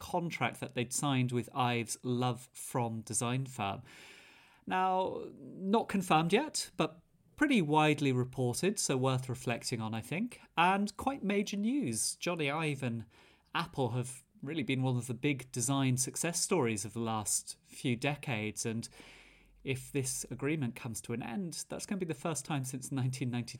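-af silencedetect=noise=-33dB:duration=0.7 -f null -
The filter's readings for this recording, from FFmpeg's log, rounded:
silence_start: 3.74
silence_end: 4.68 | silence_duration: 0.94
silence_start: 18.85
silence_end: 19.68 | silence_duration: 0.82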